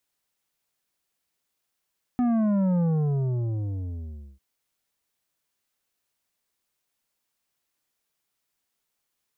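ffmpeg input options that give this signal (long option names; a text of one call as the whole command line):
ffmpeg -f lavfi -i "aevalsrc='0.0891*clip((2.2-t)/1.6,0,1)*tanh(2.82*sin(2*PI*250*2.2/log(65/250)*(exp(log(65/250)*t/2.2)-1)))/tanh(2.82)':duration=2.2:sample_rate=44100" out.wav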